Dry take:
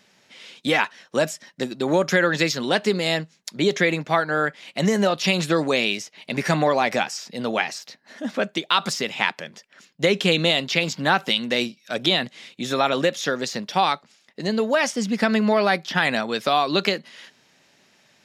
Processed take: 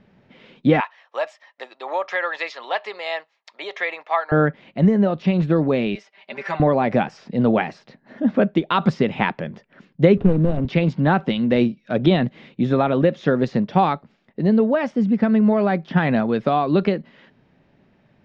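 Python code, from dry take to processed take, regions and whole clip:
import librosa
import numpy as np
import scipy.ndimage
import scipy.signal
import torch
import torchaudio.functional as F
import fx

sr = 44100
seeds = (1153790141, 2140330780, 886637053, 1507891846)

y = fx.chain(x, sr, fx.highpass(hz=770.0, slope=24),
    fx.notch(hz=1500.0, q=5.9), at=(0.8, 4.32))
y = fx.chain(y, sr, fx.highpass(hz=850.0, slope=12),
    fx.comb(ms=5.1, depth=0.94), at=(5.95, 6.6))
y = fx.chain(y, sr, fx.median_filter(points=41),
    fx.band_squash(depth_pct=40), at=(10.17, 10.65))
y = scipy.signal.sosfilt(scipy.signal.butter(2, 3400.0, 'lowpass', fs=sr, output='sos'), y)
y = fx.tilt_eq(y, sr, slope=-4.5)
y = fx.rider(y, sr, range_db=4, speed_s=0.5)
y = F.gain(torch.from_numpy(y), -1.0).numpy()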